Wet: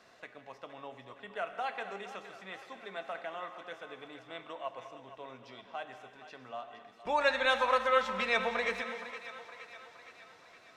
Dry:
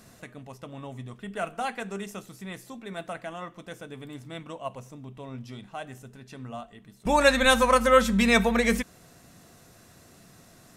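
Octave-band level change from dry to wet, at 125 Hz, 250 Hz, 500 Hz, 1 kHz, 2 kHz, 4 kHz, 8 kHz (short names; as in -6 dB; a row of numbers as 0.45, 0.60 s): -21.0, -19.5, -8.5, -6.0, -6.5, -8.0, -19.5 dB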